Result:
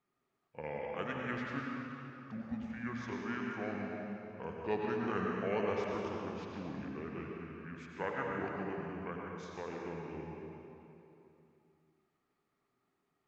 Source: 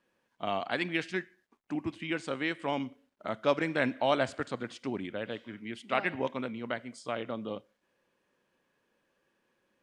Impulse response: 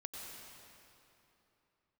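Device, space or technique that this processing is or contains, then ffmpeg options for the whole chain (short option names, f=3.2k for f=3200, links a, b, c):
slowed and reverbed: -filter_complex "[0:a]asetrate=32634,aresample=44100[a];[1:a]atrim=start_sample=2205[b];[a][b]afir=irnorm=-1:irlink=0,volume=-4dB"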